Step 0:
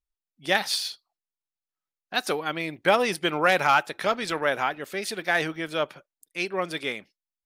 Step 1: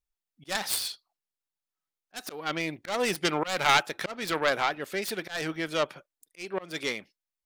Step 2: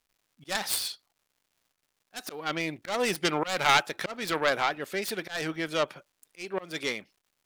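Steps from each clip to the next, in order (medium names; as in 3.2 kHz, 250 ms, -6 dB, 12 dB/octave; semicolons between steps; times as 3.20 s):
self-modulated delay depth 0.24 ms; slow attack 222 ms
crackle 270 per s -58 dBFS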